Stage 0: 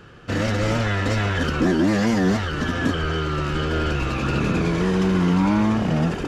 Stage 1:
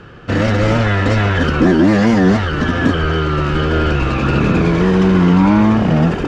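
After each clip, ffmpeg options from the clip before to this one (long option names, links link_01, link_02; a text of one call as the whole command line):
ffmpeg -i in.wav -af "aemphasis=mode=reproduction:type=50fm,volume=7.5dB" out.wav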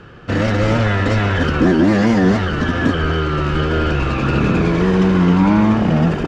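ffmpeg -i in.wav -af "aecho=1:1:188:0.211,volume=-2dB" out.wav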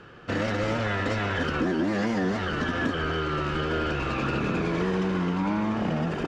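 ffmpeg -i in.wav -af "acompressor=threshold=-14dB:ratio=6,lowshelf=frequency=170:gain=-9,volume=-5.5dB" out.wav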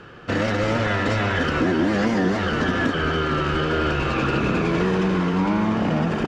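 ffmpeg -i in.wav -af "aecho=1:1:458:0.355,volume=5dB" out.wav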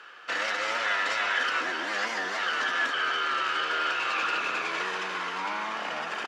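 ffmpeg -i in.wav -af "highpass=1100" out.wav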